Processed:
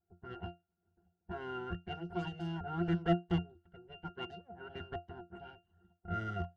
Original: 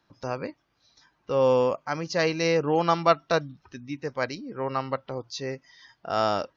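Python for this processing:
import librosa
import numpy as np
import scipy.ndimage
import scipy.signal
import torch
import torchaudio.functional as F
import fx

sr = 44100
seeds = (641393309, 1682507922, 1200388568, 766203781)

y = np.abs(x)
y = fx.highpass(y, sr, hz=85.0, slope=12, at=(4.1, 4.81))
y = fx.hpss(y, sr, part='percussive', gain_db=8)
y = fx.env_lowpass(y, sr, base_hz=950.0, full_db=-20.5)
y = fx.octave_resonator(y, sr, note='F', decay_s=0.19)
y = F.gain(torch.from_numpy(y), 1.0).numpy()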